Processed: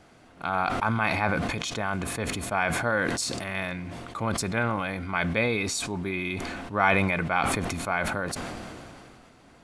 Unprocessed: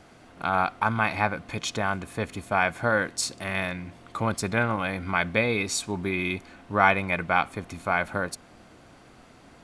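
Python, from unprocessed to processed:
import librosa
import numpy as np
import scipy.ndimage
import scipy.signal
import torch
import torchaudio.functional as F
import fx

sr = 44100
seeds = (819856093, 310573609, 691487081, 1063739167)

y = fx.sustainer(x, sr, db_per_s=23.0)
y = y * 10.0 ** (-3.0 / 20.0)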